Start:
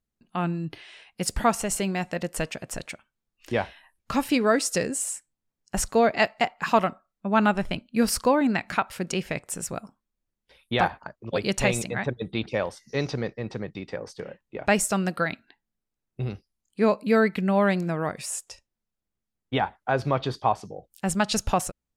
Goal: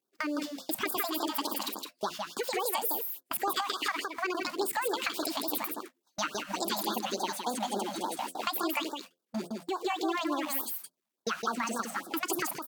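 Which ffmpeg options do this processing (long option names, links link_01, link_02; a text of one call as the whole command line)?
ffmpeg -i in.wav -filter_complex "[0:a]aeval=exprs='val(0)+0.5*0.0188*sgn(val(0))':channel_layout=same,highpass=frequency=120:width=0.5412,highpass=frequency=120:width=1.3066,agate=range=-39dB:threshold=-36dB:ratio=16:detection=peak,equalizer=frequency=10000:width_type=o:width=0.22:gain=4.5,bandreject=frequency=50:width_type=h:width=6,bandreject=frequency=100:width_type=h:width=6,bandreject=frequency=150:width_type=h:width=6,bandreject=frequency=200:width_type=h:width=6,bandreject=frequency=250:width_type=h:width=6,bandreject=frequency=300:width_type=h:width=6,bandreject=frequency=350:width_type=h:width=6,bandreject=frequency=400:width_type=h:width=6,acompressor=threshold=-27dB:ratio=6,asplit=2[link_01][link_02];[link_02]aecho=0:1:282:0.631[link_03];[link_01][link_03]amix=inputs=2:normalize=0,asetrate=76440,aresample=44100,afftfilt=real='re*(1-between(b*sr/1024,340*pow(2500/340,0.5+0.5*sin(2*PI*3.5*pts/sr))/1.41,340*pow(2500/340,0.5+0.5*sin(2*PI*3.5*pts/sr))*1.41))':imag='im*(1-between(b*sr/1024,340*pow(2500/340,0.5+0.5*sin(2*PI*3.5*pts/sr))/1.41,340*pow(2500/340,0.5+0.5*sin(2*PI*3.5*pts/sr))*1.41))':win_size=1024:overlap=0.75,volume=-1dB" out.wav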